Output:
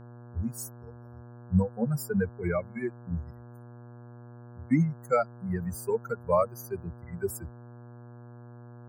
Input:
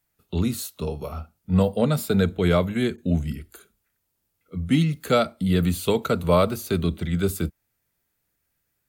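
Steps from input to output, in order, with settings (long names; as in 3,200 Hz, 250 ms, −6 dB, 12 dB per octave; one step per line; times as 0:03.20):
spectral dynamics exaggerated over time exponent 3
Chebyshev band-stop filter 2,200–4,900 Hz, order 4
hum with harmonics 120 Hz, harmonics 14, −47 dBFS −7 dB per octave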